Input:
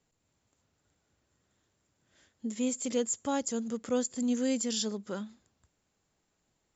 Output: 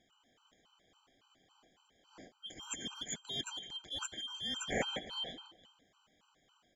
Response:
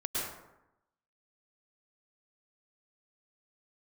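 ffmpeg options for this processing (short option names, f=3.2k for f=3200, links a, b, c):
-filter_complex "[0:a]afftfilt=real='real(if(lt(b,272),68*(eq(floor(b/68),0)*2+eq(floor(b/68),1)*3+eq(floor(b/68),2)*0+eq(floor(b/68),3)*1)+mod(b,68),b),0)':imag='imag(if(lt(b,272),68*(eq(floor(b/68),0)*2+eq(floor(b/68),1)*3+eq(floor(b/68),2)*0+eq(floor(b/68),3)*1)+mod(b,68),b),0)':win_size=2048:overlap=0.75,adynamicsmooth=sensitivity=0.5:basefreq=5k,asplit=2[a][b];[b]adelay=160,lowpass=f=3.9k:p=1,volume=-14dB,asplit=2[c][d];[d]adelay=160,lowpass=f=3.9k:p=1,volume=0.44,asplit=2[e][f];[f]adelay=160,lowpass=f=3.9k:p=1,volume=0.44,asplit=2[g][h];[h]adelay=160,lowpass=f=3.9k:p=1,volume=0.44[i];[a][c][e][g][i]amix=inputs=5:normalize=0,areverse,acompressor=threshold=-44dB:ratio=10,areverse,equalizer=f=250:t=o:w=1:g=6,equalizer=f=1k:t=o:w=1:g=4,equalizer=f=4k:t=o:w=1:g=-12,afftfilt=real='re*gt(sin(2*PI*3.6*pts/sr)*(1-2*mod(floor(b*sr/1024/790),2)),0)':imag='im*gt(sin(2*PI*3.6*pts/sr)*(1-2*mod(floor(b*sr/1024/790),2)),0)':win_size=1024:overlap=0.75,volume=16dB"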